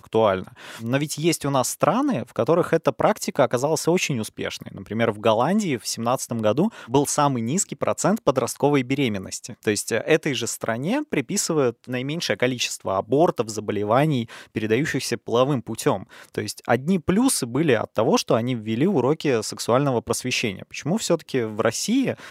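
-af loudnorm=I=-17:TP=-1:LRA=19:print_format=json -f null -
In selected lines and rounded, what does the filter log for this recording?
"input_i" : "-22.8",
"input_tp" : "-2.9",
"input_lra" : "2.0",
"input_thresh" : "-32.9",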